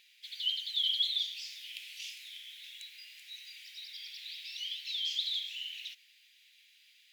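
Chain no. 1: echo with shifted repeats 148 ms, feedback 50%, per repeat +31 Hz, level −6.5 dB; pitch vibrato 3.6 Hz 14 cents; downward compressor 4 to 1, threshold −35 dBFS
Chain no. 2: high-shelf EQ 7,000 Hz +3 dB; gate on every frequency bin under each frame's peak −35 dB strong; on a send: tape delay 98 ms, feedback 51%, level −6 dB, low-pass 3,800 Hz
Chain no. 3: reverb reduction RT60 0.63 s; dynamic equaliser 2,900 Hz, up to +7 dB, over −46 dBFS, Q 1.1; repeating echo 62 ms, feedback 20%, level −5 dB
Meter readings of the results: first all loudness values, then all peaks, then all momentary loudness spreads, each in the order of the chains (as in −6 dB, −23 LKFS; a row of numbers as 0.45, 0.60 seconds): −38.5, −34.0, −26.0 LKFS; −26.0, −19.0, −13.0 dBFS; 12, 17, 23 LU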